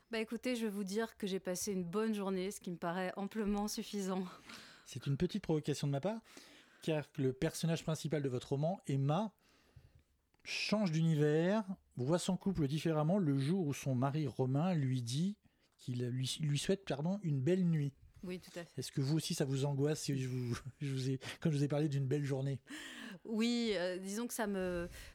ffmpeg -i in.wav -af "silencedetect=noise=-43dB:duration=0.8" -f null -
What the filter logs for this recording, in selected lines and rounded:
silence_start: 9.27
silence_end: 10.45 | silence_duration: 1.18